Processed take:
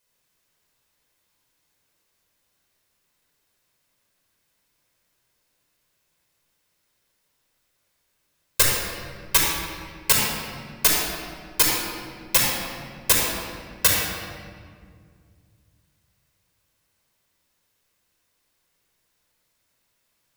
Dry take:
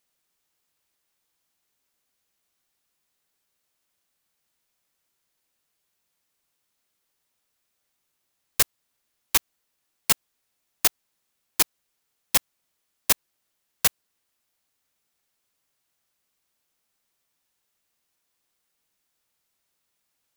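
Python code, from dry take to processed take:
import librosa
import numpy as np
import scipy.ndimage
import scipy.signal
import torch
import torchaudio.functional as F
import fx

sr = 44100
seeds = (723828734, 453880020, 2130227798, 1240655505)

y = fx.room_shoebox(x, sr, seeds[0], volume_m3=3700.0, walls='mixed', distance_m=5.1)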